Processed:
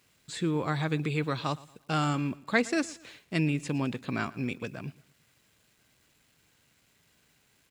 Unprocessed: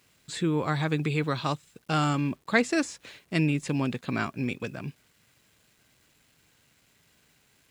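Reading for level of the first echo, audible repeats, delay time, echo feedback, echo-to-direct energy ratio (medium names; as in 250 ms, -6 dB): -21.0 dB, 2, 115 ms, 37%, -20.5 dB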